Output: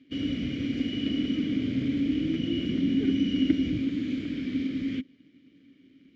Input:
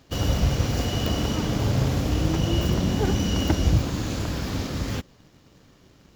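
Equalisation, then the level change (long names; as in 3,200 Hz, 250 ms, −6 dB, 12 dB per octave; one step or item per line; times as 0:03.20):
formant filter i
high-shelf EQ 5,100 Hz −11.5 dB
+8.5 dB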